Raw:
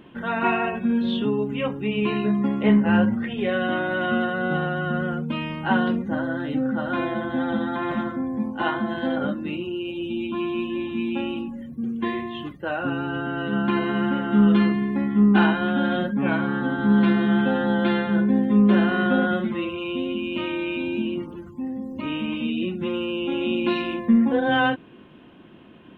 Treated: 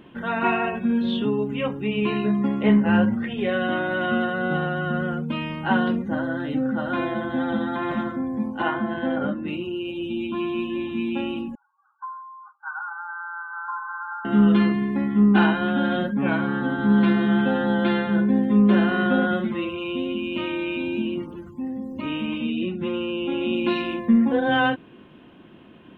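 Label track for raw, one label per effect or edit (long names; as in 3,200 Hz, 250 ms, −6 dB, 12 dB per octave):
8.620000	9.480000	low-pass filter 3,000 Hz 24 dB per octave
11.550000	14.250000	linear-phase brick-wall band-pass 790–1,600 Hz
22.380000	23.530000	high-frequency loss of the air 68 metres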